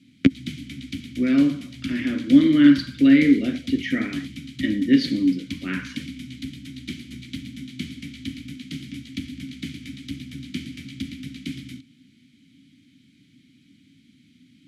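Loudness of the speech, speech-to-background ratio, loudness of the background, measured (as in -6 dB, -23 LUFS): -19.5 LUFS, 16.0 dB, -35.5 LUFS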